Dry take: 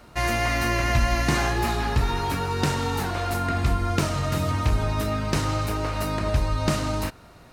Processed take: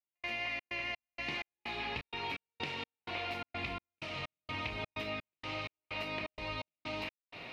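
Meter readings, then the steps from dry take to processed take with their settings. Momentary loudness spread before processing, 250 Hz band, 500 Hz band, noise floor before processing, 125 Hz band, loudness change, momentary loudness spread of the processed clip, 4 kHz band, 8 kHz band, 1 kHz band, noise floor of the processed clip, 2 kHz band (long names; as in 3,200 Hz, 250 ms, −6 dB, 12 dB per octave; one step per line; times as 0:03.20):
4 LU, −19.0 dB, −15.5 dB, −49 dBFS, −25.0 dB, −14.5 dB, 5 LU, −9.0 dB, −28.0 dB, −16.0 dB, below −85 dBFS, −9.5 dB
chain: high-pass filter 580 Hz 6 dB per octave
high shelf with overshoot 1,900 Hz +7.5 dB, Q 3
downward compressor 6 to 1, threshold −40 dBFS, peak gain reduction 21 dB
gate pattern "..xxx.xx..xx" 127 BPM −60 dB
high-frequency loss of the air 340 metres
level +7.5 dB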